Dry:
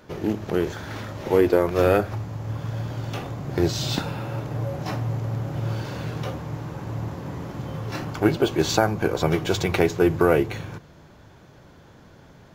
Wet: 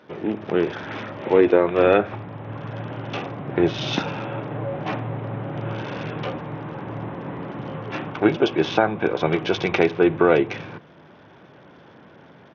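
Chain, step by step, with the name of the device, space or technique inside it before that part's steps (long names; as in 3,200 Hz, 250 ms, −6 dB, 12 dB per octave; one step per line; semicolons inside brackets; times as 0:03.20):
dynamic equaliser 2,500 Hz, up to +4 dB, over −51 dBFS, Q 5.6
Bluetooth headset (high-pass filter 180 Hz 12 dB per octave; automatic gain control gain up to 4 dB; downsampling to 8,000 Hz; SBC 64 kbit/s 48,000 Hz)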